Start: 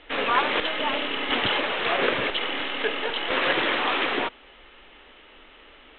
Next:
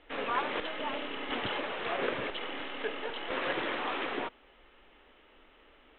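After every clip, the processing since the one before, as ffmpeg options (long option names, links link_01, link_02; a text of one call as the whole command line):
ffmpeg -i in.wav -af "highshelf=frequency=2200:gain=-8,volume=-7.5dB" out.wav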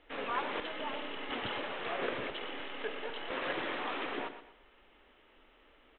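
ffmpeg -i in.wav -af "aecho=1:1:120|240|360|480:0.282|0.0958|0.0326|0.0111,volume=-3.5dB" out.wav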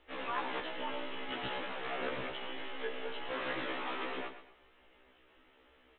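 ffmpeg -i in.wav -af "afftfilt=real='re*1.73*eq(mod(b,3),0)':imag='im*1.73*eq(mod(b,3),0)':win_size=2048:overlap=0.75,volume=1dB" out.wav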